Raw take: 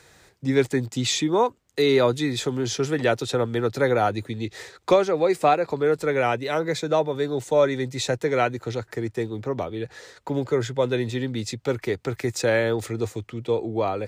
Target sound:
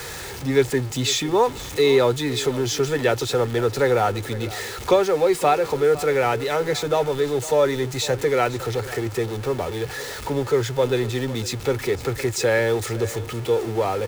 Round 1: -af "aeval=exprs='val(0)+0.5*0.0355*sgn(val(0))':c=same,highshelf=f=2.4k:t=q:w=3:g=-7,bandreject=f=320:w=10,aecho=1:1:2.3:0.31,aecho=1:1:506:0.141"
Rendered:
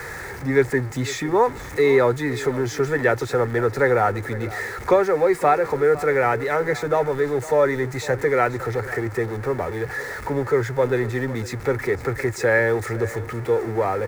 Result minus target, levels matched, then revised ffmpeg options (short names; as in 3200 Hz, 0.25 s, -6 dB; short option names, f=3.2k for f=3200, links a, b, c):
4000 Hz band -11.0 dB
-af "aeval=exprs='val(0)+0.5*0.0355*sgn(val(0))':c=same,bandreject=f=320:w=10,aecho=1:1:2.3:0.31,aecho=1:1:506:0.141"